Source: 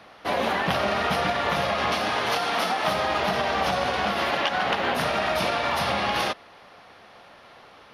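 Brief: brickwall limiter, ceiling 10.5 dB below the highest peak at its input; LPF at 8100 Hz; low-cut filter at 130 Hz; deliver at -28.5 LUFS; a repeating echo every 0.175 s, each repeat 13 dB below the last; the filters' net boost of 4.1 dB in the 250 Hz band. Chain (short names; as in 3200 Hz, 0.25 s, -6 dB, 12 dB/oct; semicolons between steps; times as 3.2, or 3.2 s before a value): HPF 130 Hz; LPF 8100 Hz; bell 250 Hz +6 dB; limiter -19.5 dBFS; feedback echo 0.175 s, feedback 22%, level -13 dB; gain -0.5 dB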